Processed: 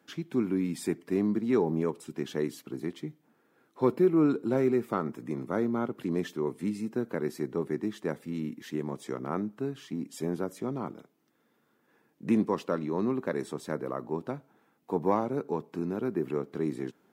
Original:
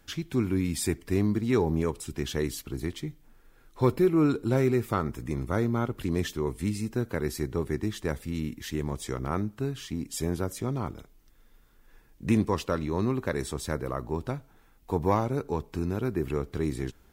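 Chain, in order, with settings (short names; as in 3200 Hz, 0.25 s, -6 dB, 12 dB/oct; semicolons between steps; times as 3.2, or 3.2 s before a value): HPF 170 Hz 24 dB/oct; high shelf 2100 Hz -11 dB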